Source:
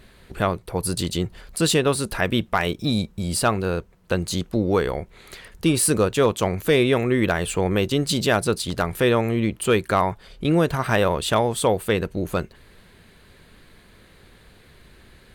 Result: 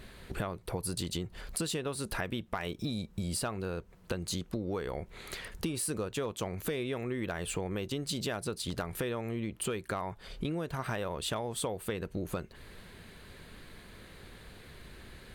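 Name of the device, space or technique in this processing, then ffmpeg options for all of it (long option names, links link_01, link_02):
serial compression, peaks first: -af "acompressor=threshold=-28dB:ratio=6,acompressor=threshold=-37dB:ratio=1.5"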